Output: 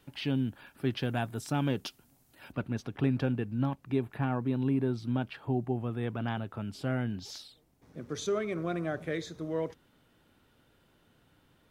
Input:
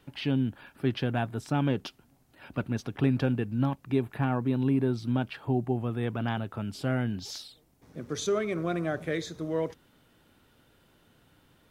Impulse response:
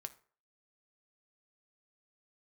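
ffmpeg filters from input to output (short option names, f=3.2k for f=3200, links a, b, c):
-af "asetnsamples=n=441:p=0,asendcmd='1.03 highshelf g 11;2.52 highshelf g -3',highshelf=f=5k:g=6,volume=-3dB"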